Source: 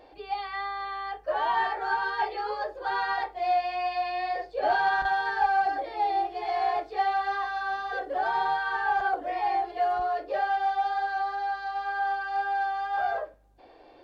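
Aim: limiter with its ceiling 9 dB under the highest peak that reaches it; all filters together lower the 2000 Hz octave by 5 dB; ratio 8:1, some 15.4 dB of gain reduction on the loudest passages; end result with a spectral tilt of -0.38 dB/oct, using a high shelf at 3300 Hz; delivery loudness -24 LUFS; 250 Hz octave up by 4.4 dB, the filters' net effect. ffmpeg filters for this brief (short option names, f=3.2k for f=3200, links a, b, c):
-af "equalizer=f=250:t=o:g=8,equalizer=f=2k:t=o:g=-8.5,highshelf=f=3.3k:g=4,acompressor=threshold=-37dB:ratio=8,volume=20dB,alimiter=limit=-17dB:level=0:latency=1"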